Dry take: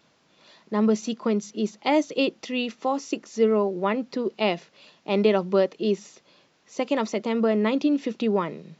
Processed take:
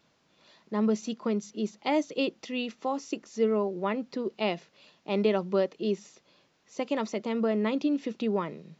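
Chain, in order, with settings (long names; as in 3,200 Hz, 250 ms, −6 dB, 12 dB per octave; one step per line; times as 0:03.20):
low-shelf EQ 87 Hz +6.5 dB
level −5.5 dB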